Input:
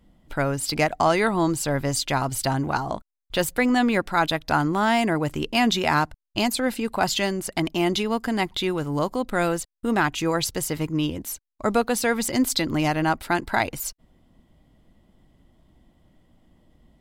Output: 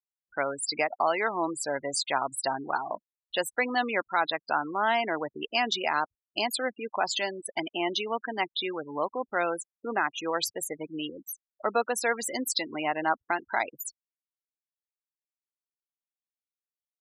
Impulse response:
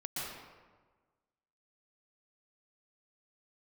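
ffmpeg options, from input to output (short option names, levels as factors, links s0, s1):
-af "afftfilt=real='re*gte(hypot(re,im),0.0631)':imag='im*gte(hypot(re,im),0.0631)':win_size=1024:overlap=0.75,highpass=480,alimiter=limit=0.266:level=0:latency=1:release=448,volume=0.794"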